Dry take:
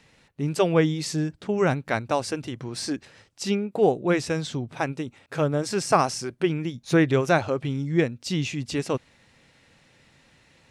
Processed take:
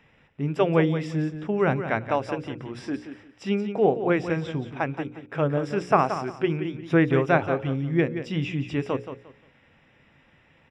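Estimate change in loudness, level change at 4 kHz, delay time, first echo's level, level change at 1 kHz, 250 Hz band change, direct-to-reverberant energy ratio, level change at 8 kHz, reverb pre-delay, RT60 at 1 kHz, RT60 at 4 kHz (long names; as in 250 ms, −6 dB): 0.0 dB, −7.5 dB, 176 ms, −10.0 dB, +0.5 dB, 0.0 dB, no reverb audible, below −15 dB, no reverb audible, no reverb audible, no reverb audible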